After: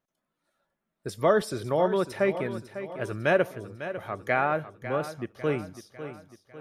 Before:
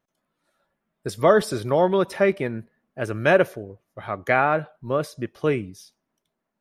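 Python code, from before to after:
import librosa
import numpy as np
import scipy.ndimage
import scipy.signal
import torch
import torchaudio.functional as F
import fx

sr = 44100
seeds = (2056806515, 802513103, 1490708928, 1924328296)

y = fx.echo_feedback(x, sr, ms=550, feedback_pct=49, wet_db=-12.0)
y = y * librosa.db_to_amplitude(-5.5)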